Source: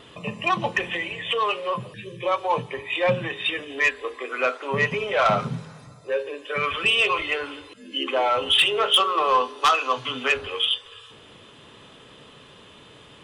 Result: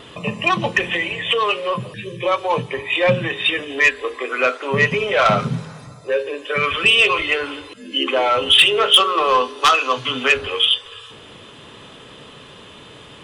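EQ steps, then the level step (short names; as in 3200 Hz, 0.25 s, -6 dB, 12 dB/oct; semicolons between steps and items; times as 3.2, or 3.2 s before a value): dynamic EQ 860 Hz, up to -5 dB, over -34 dBFS, Q 1.3; +7.0 dB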